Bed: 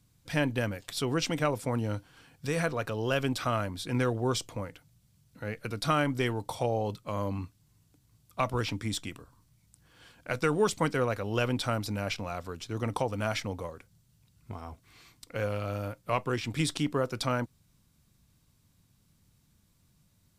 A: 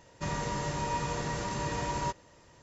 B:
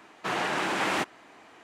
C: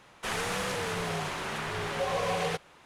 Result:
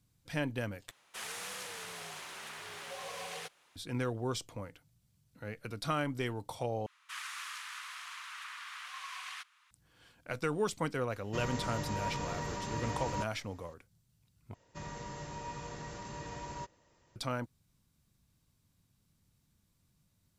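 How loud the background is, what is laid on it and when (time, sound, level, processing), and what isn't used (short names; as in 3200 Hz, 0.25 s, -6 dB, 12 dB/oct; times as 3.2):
bed -6.5 dB
0.91 replace with C -13 dB + tilt +3 dB/oct
6.86 replace with C -8 dB + elliptic high-pass 1100 Hz, stop band 60 dB
11.12 add A -5 dB
14.54 replace with A -10.5 dB
not used: B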